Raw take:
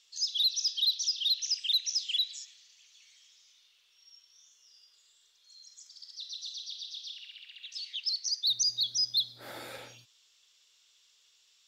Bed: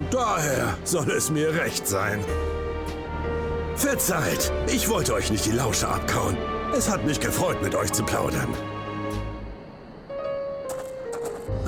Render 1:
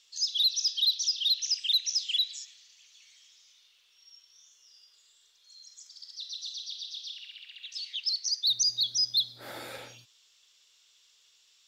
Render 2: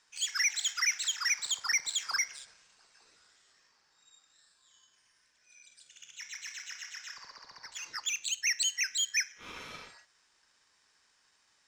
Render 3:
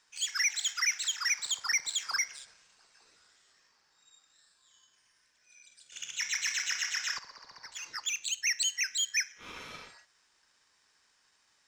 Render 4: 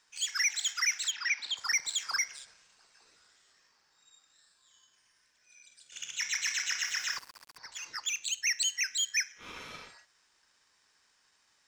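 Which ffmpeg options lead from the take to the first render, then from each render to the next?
-af "volume=2dB"
-af "adynamicsmooth=sensitivity=7:basefreq=6.3k,aeval=exprs='val(0)*sin(2*PI*1800*n/s)':c=same"
-filter_complex "[0:a]asplit=3[a][b][c];[a]atrim=end=5.922[d];[b]atrim=start=5.918:end=7.192,asetpts=PTS-STARTPTS,volume=11dB[e];[c]atrim=start=7.188[f];[d][e]acrossfade=d=0.004:c1=hsin:c2=hsin[g];[g][f]acrossfade=d=0.004:c1=hsin:c2=hsin"
-filter_complex "[0:a]asplit=3[a][b][c];[a]afade=t=out:st=1.1:d=0.02[d];[b]highpass=f=220:w=0.5412,highpass=f=220:w=1.3066,equalizer=f=250:t=q:w=4:g=8,equalizer=f=470:t=q:w=4:g=-5,equalizer=f=1.2k:t=q:w=4:g=-7,equalizer=f=2.6k:t=q:w=4:g=5,lowpass=f=4.8k:w=0.5412,lowpass=f=4.8k:w=1.3066,afade=t=in:st=1.1:d=0.02,afade=t=out:st=1.56:d=0.02[e];[c]afade=t=in:st=1.56:d=0.02[f];[d][e][f]amix=inputs=3:normalize=0,asettb=1/sr,asplit=3[g][h][i];[g]atrim=end=6.814[j];[h]atrim=start=6.81:end=7.58,asetpts=PTS-STARTPTS,afade=t=in:d=0.004:c=qsin,afade=t=out:st=0.766:d=0.004:c=qsin,aeval=exprs='val(0)*gte(abs(val(0)),0.00473)':c=same[k];[i]atrim=start=7.576[l];[j][k]acrossfade=d=0.004:c1=hsin:c2=qsin[m];[m][l]acrossfade=d=0.004:c1=qsin:c2=hsin"

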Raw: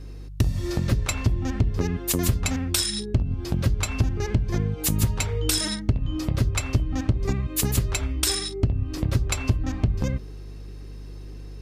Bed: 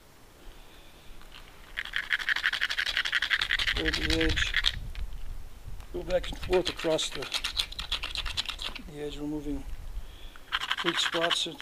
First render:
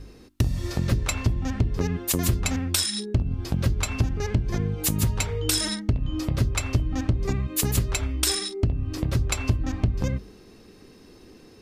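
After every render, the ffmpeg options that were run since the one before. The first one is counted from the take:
-af "bandreject=f=50:t=h:w=4,bandreject=f=100:t=h:w=4,bandreject=f=150:t=h:w=4,bandreject=f=200:t=h:w=4,bandreject=f=250:t=h:w=4,bandreject=f=300:t=h:w=4,bandreject=f=350:t=h:w=4"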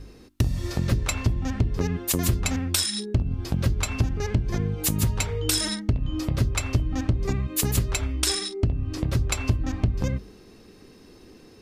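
-filter_complex "[0:a]asettb=1/sr,asplit=3[a][b][c];[a]atrim=end=8.204[d];[b]atrim=start=8.2:end=9.06,asetpts=PTS-STARTPTS,afade=t=in:d=0.004:c=qsin,afade=t=out:st=0.856:d=0.004:c=qsin,lowpass=11k[e];[c]atrim=start=9.056[f];[d][e]acrossfade=d=0.004:c1=hsin:c2=qsin[g];[g][f]acrossfade=d=0.004:c1=qsin:c2=hsin"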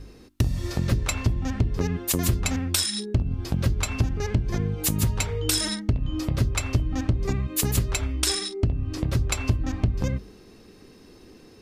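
-af anull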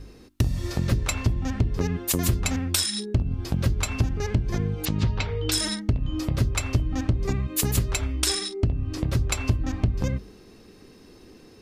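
-filter_complex "[0:a]asettb=1/sr,asplit=3[a][b][c];[a]atrim=end=4.854[d];[b]atrim=start=4.85:end=5.52,asetpts=PTS-STARTPTS,afade=t=in:d=0.004:c=qsin,afade=t=out:st=0.666:d=0.004:c=qsin,lowpass=f=4.8k:w=0.5412,lowpass=f=4.8k:w=1.3066[e];[c]atrim=start=5.516[f];[d][e]acrossfade=d=0.004:c1=hsin:c2=qsin[g];[g][f]acrossfade=d=0.004:c1=qsin:c2=hsin"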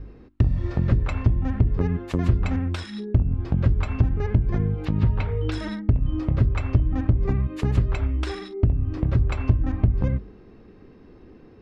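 -af "lowpass=1.9k,lowshelf=f=160:g=5"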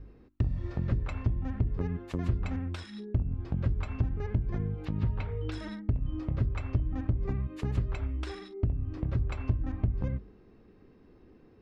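-af "volume=-9dB"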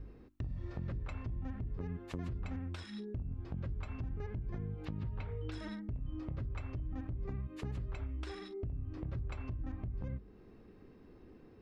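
-af "alimiter=limit=-24dB:level=0:latency=1:release=33,acompressor=threshold=-42dB:ratio=2"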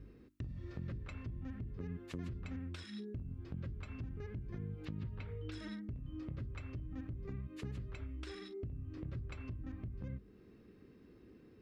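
-af "highpass=f=96:p=1,equalizer=f=800:t=o:w=1.1:g=-9.5"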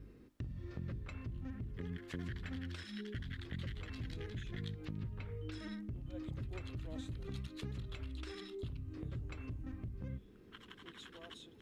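-filter_complex "[1:a]volume=-26.5dB[a];[0:a][a]amix=inputs=2:normalize=0"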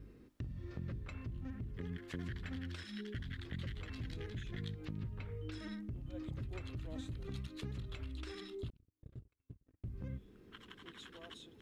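-filter_complex "[0:a]asettb=1/sr,asplit=3[a][b][c];[a]atrim=end=8.704[d];[b]atrim=start=8.7:end=9.84,asetpts=PTS-STARTPTS,afade=t=in:d=0.004:c=qsin,afade=t=out:st=1.136:d=0.004:c=qsin,agate=range=-47dB:threshold=-40dB:ratio=16:release=100:detection=peak[e];[c]atrim=start=9.836[f];[d][e]acrossfade=d=0.004:c1=hsin:c2=qsin[g];[g][f]acrossfade=d=0.004:c1=qsin:c2=hsin"

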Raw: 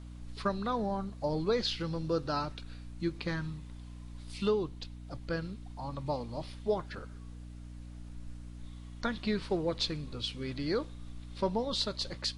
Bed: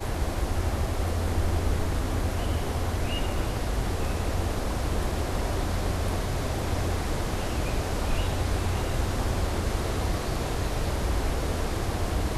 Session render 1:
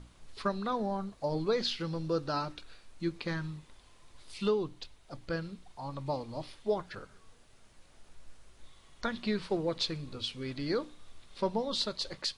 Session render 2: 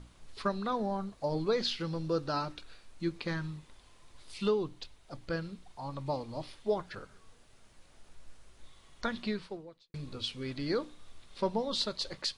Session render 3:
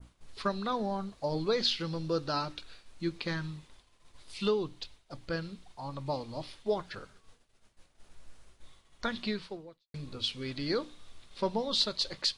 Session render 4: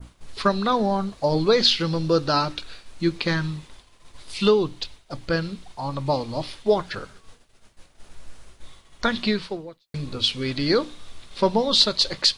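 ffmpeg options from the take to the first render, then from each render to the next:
-af "bandreject=f=60:t=h:w=6,bandreject=f=120:t=h:w=6,bandreject=f=180:t=h:w=6,bandreject=f=240:t=h:w=6,bandreject=f=300:t=h:w=6"
-filter_complex "[0:a]asplit=2[a][b];[a]atrim=end=9.94,asetpts=PTS-STARTPTS,afade=t=out:st=9.21:d=0.73:c=qua[c];[b]atrim=start=9.94,asetpts=PTS-STARTPTS,afade=t=in:d=0.004:c=hsin[d];[c][d]concat=n=2:v=0:a=1"
-af "agate=range=-33dB:threshold=-50dB:ratio=3:detection=peak,adynamicequalizer=threshold=0.00282:dfrequency=3900:dqfactor=0.85:tfrequency=3900:tqfactor=0.85:attack=5:release=100:ratio=0.375:range=2.5:mode=boostabove:tftype=bell"
-af "volume=11dB"

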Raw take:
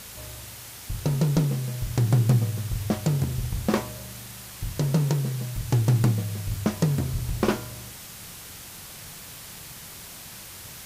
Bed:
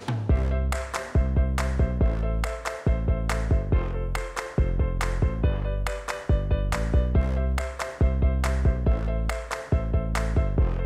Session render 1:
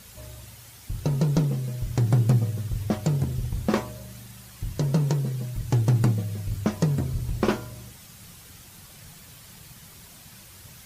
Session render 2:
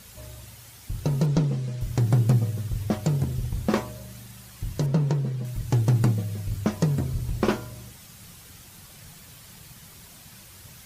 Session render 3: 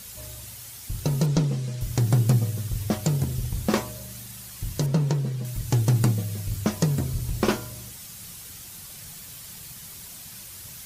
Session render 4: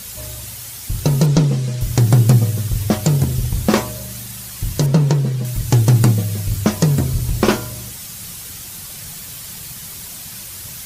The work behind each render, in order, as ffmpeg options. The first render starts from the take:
-af "afftdn=nr=8:nf=-42"
-filter_complex "[0:a]asettb=1/sr,asplit=3[a][b][c];[a]atrim=end=1.264[d];[b]atrim=start=1.26:end=1.81,asetpts=PTS-STARTPTS,afade=t=in:d=0.004:c=qsin,afade=t=out:st=0.546:d=0.004:c=qsin,lowpass=6.9k[e];[c]atrim=start=1.806[f];[d][e]acrossfade=d=0.004:c1=hsin:c2=qsin[g];[g][f]acrossfade=d=0.004:c1=qsin:c2=hsin,asettb=1/sr,asplit=3[h][i][j];[h]atrim=end=4.864[k];[i]atrim=start=4.86:end=5.45,asetpts=PTS-STARTPTS,afade=t=in:d=0.004:c=qsin,afade=t=out:st=0.586:d=0.004:c=qsin,aemphasis=mode=reproduction:type=50kf[l];[j]atrim=start=5.446[m];[k][l]acrossfade=d=0.004:c1=hsin:c2=qsin[n];[n][m]acrossfade=d=0.004:c1=qsin:c2=hsin"
-af "highshelf=f=3.7k:g=9"
-af "volume=9dB,alimiter=limit=-3dB:level=0:latency=1"

